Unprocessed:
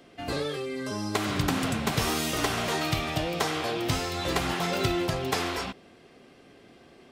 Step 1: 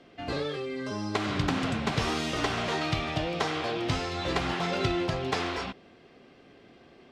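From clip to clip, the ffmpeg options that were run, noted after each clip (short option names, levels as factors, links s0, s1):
-af "lowpass=5000,volume=0.891"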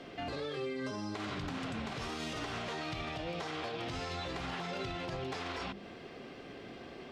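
-af "bandreject=f=50:t=h:w=6,bandreject=f=100:t=h:w=6,bandreject=f=150:t=h:w=6,bandreject=f=200:t=h:w=6,bandreject=f=250:t=h:w=6,bandreject=f=300:t=h:w=6,bandreject=f=350:t=h:w=6,acompressor=threshold=0.00891:ratio=2.5,alimiter=level_in=4.73:limit=0.0631:level=0:latency=1:release=87,volume=0.211,volume=2.24"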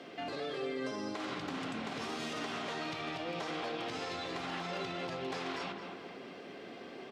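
-filter_complex "[0:a]highpass=200,asplit=2[s0][s1];[s1]adelay=217,lowpass=f=2900:p=1,volume=0.473,asplit=2[s2][s3];[s3]adelay=217,lowpass=f=2900:p=1,volume=0.54,asplit=2[s4][s5];[s5]adelay=217,lowpass=f=2900:p=1,volume=0.54,asplit=2[s6][s7];[s7]adelay=217,lowpass=f=2900:p=1,volume=0.54,asplit=2[s8][s9];[s9]adelay=217,lowpass=f=2900:p=1,volume=0.54,asplit=2[s10][s11];[s11]adelay=217,lowpass=f=2900:p=1,volume=0.54,asplit=2[s12][s13];[s13]adelay=217,lowpass=f=2900:p=1,volume=0.54[s14];[s0][s2][s4][s6][s8][s10][s12][s14]amix=inputs=8:normalize=0"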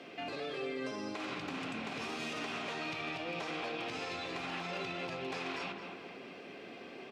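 -af "equalizer=f=2500:w=6:g=8.5,volume=0.841"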